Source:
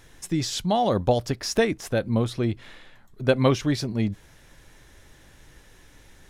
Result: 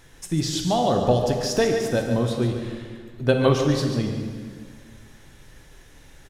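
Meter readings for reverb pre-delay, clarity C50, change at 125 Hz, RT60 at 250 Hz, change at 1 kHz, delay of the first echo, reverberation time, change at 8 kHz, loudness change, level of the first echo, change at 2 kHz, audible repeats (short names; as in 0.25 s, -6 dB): 4 ms, 3.5 dB, +2.5 dB, 2.1 s, +1.5 dB, 0.143 s, 1.8 s, +2.0 dB, +1.5 dB, -8.5 dB, +0.5 dB, 1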